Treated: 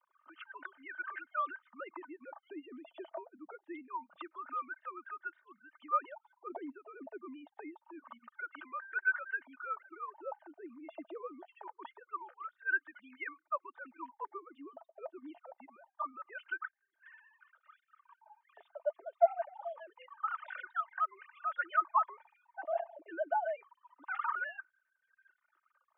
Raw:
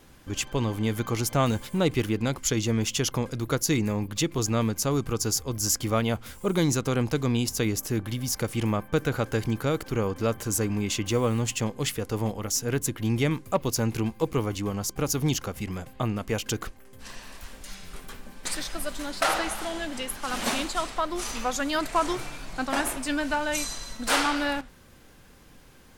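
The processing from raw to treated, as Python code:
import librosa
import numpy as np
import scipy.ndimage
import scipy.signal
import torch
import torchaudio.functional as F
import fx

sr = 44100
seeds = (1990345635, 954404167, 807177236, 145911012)

y = fx.sine_speech(x, sr)
y = fx.dynamic_eq(y, sr, hz=1400.0, q=0.93, threshold_db=-40.0, ratio=4.0, max_db=4)
y = y + 0.69 * np.pad(y, (int(3.3 * sr / 1000.0), 0))[:len(y)]
y = fx.dereverb_blind(y, sr, rt60_s=1.1)
y = fx.wah_lfo(y, sr, hz=0.25, low_hz=660.0, high_hz=1600.0, q=11.0)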